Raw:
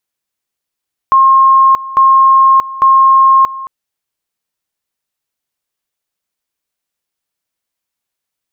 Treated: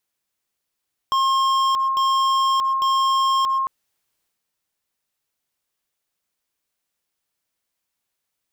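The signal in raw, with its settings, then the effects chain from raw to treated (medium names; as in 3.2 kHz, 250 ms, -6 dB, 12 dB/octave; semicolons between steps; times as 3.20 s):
two-level tone 1.07 kHz -3.5 dBFS, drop 17.5 dB, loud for 0.63 s, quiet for 0.22 s, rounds 3
compression 2.5:1, threshold -10 dBFS; transient shaper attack -3 dB, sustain +5 dB; hard clipper -18 dBFS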